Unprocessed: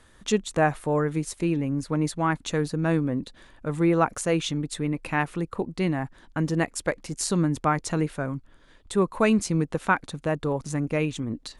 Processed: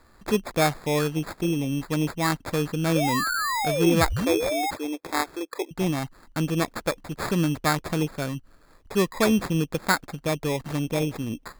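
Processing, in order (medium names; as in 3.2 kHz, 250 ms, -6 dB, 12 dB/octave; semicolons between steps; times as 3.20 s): 2.95–4.71 s: painted sound fall 2.1–5.4 kHz -26 dBFS; 4.03–5.71 s: brick-wall FIR band-pass 280–9400 Hz; sample-and-hold 15×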